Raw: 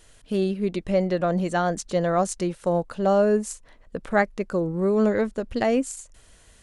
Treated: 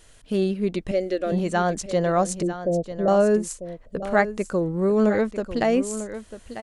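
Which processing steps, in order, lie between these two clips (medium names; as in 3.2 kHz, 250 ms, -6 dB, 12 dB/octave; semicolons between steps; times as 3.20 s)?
0.91–1.32 s: static phaser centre 390 Hz, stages 4; 2.42–3.08 s: Chebyshev low-pass 650 Hz, order 5; delay 946 ms -12 dB; trim +1 dB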